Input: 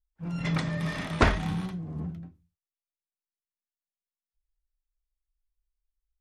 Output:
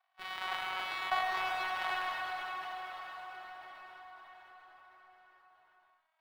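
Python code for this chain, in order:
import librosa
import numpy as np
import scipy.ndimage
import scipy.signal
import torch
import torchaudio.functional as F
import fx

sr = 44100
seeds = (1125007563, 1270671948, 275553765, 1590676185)

y = np.r_[np.sort(x[:len(x) // 128 * 128].reshape(-1, 128), axis=1).ravel(), x[len(x) // 128 * 128:]]
y = fx.doppler_pass(y, sr, speed_mps=27, closest_m=9.4, pass_at_s=2.42)
y = scipy.signal.sosfilt(scipy.signal.cheby1(5, 1.0, 680.0, 'highpass', fs=sr, output='sos'), y)
y = fx.high_shelf(y, sr, hz=3100.0, db=9.0)
y = fx.leveller(y, sr, passes=2)
y = fx.air_absorb(y, sr, metres=450.0)
y = fx.rev_plate(y, sr, seeds[0], rt60_s=3.9, hf_ratio=0.85, predelay_ms=0, drr_db=1.0)
y = fx.env_flatten(y, sr, amount_pct=50)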